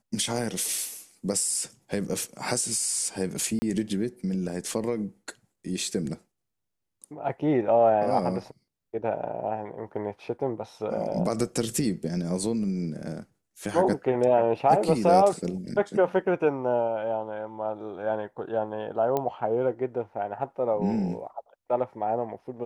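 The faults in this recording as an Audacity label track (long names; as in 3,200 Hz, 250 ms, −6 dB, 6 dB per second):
3.590000	3.620000	drop-out 30 ms
19.170000	19.170000	click −14 dBFS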